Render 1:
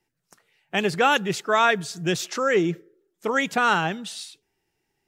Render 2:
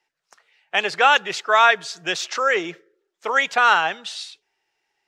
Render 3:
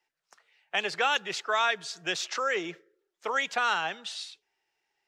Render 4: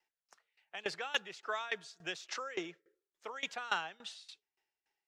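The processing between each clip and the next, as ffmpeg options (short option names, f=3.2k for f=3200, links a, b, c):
-filter_complex "[0:a]acrossover=split=520 6700:gain=0.0794 1 0.126[a][b][c];[a][b][c]amix=inputs=3:normalize=0,volume=5.5dB"
-filter_complex "[0:a]acrossover=split=320|3000[a][b][c];[b]acompressor=threshold=-24dB:ratio=2[d];[a][d][c]amix=inputs=3:normalize=0,volume=-5.5dB"
-af "aeval=exprs='val(0)*pow(10,-20*if(lt(mod(3.5*n/s,1),2*abs(3.5)/1000),1-mod(3.5*n/s,1)/(2*abs(3.5)/1000),(mod(3.5*n/s,1)-2*abs(3.5)/1000)/(1-2*abs(3.5)/1000))/20)':c=same,volume=-2.5dB"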